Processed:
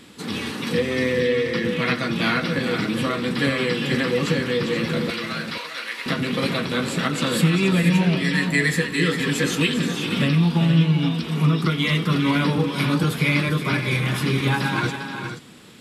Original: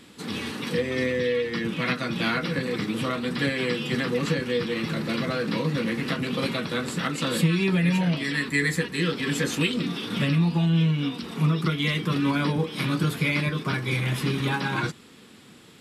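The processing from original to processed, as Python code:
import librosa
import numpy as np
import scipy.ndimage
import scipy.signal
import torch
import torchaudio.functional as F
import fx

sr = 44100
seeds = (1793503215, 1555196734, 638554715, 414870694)

y = fx.highpass(x, sr, hz=1200.0, slope=12, at=(5.1, 6.06))
y = fx.echo_multitap(y, sr, ms=(89, 400, 477), db=(-19.0, -10.0, -10.0))
y = y * 10.0 ** (3.5 / 20.0)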